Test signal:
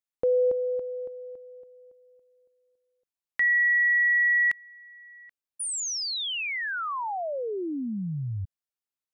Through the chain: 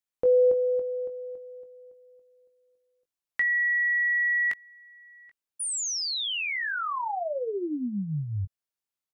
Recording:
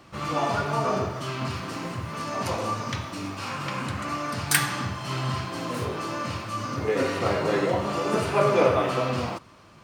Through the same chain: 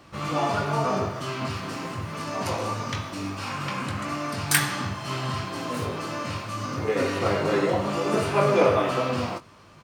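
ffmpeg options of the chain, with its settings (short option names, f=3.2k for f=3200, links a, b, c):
-filter_complex "[0:a]asplit=2[a][b];[b]adelay=20,volume=-8dB[c];[a][c]amix=inputs=2:normalize=0"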